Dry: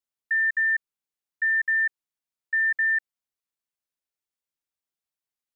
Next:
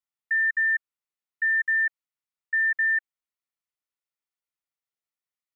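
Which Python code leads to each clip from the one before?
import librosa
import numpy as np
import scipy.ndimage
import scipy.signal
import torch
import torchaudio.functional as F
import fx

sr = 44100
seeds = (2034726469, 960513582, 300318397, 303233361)

y = fx.peak_eq(x, sr, hz=1600.0, db=9.0, octaves=1.3)
y = fx.notch(y, sr, hz=1600.0, q=5.6)
y = y * librosa.db_to_amplitude(-6.5)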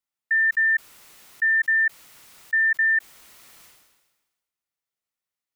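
y = fx.sustainer(x, sr, db_per_s=46.0)
y = y * librosa.db_to_amplitude(3.0)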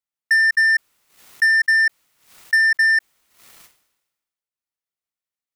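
y = fx.transient(x, sr, attack_db=5, sustain_db=-11)
y = fx.leveller(y, sr, passes=2)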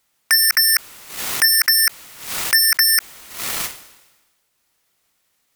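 y = fx.fold_sine(x, sr, drive_db=18, ceiling_db=-11.0)
y = y * librosa.db_to_amplitude(2.5)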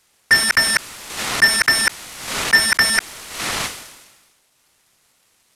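y = fx.cvsd(x, sr, bps=64000)
y = y * librosa.db_to_amplitude(6.5)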